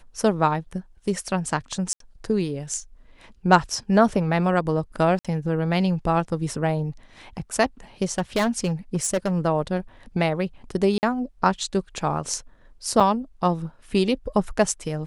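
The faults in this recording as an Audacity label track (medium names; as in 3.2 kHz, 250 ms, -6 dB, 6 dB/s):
1.930000	2.000000	dropout 73 ms
5.190000	5.250000	dropout 56 ms
8.180000	9.320000	clipped -17.5 dBFS
10.980000	11.030000	dropout 49 ms
13.000000	13.010000	dropout 5.3 ms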